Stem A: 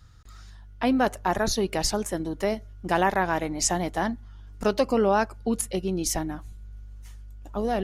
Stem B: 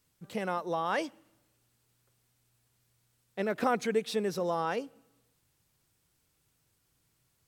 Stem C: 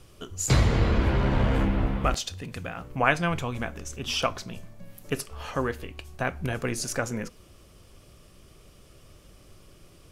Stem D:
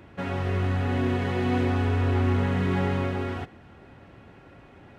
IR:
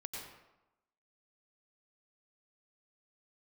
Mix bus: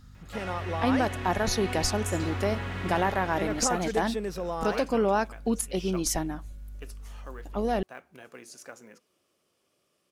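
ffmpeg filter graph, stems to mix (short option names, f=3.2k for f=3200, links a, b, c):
-filter_complex "[0:a]alimiter=limit=-14dB:level=0:latency=1:release=252,aeval=exprs='val(0)+0.00355*(sin(2*PI*50*n/s)+sin(2*PI*2*50*n/s)/2+sin(2*PI*3*50*n/s)/3+sin(2*PI*4*50*n/s)/4+sin(2*PI*5*50*n/s)/5)':c=same,volume=-1dB[a];[1:a]volume=-1.5dB[b];[2:a]highpass=280,acrusher=bits=7:mode=log:mix=0:aa=0.000001,adelay=1700,volume=-15.5dB[c];[3:a]equalizer=f=240:w=0.41:g=-14,adelay=150,volume=-1.5dB[d];[a][b][c][d]amix=inputs=4:normalize=0"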